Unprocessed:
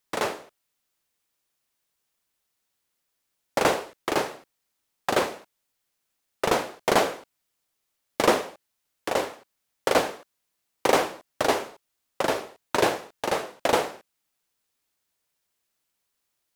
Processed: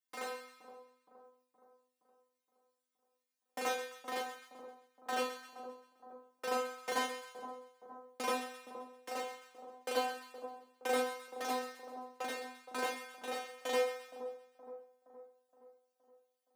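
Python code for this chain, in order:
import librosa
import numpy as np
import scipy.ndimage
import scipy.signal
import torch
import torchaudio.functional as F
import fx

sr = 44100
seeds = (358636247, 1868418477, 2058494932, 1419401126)

p1 = scipy.signal.sosfilt(scipy.signal.butter(4, 120.0, 'highpass', fs=sr, output='sos'), x)
p2 = fx.low_shelf(p1, sr, hz=210.0, db=-8.0)
p3 = fx.stiff_resonator(p2, sr, f0_hz=250.0, decay_s=0.47, stiffness=0.002)
p4 = p3 + fx.echo_split(p3, sr, split_hz=1100.0, low_ms=469, high_ms=131, feedback_pct=52, wet_db=-11.0, dry=0)
y = p4 * librosa.db_to_amplitude(3.0)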